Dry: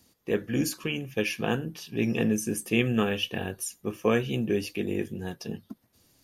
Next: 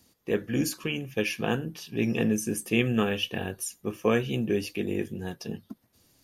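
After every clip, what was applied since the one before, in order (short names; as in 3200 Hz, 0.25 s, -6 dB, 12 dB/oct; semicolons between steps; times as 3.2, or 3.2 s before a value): nothing audible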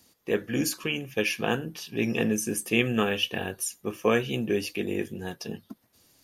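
low shelf 300 Hz -6.5 dB; gain +3 dB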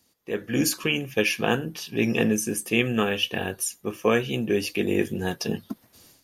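AGC gain up to 15 dB; gain -5.5 dB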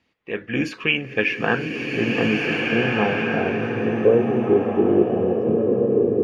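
low-pass sweep 2400 Hz -> 380 Hz, 0.91–4.55; bloom reverb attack 1.8 s, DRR -1 dB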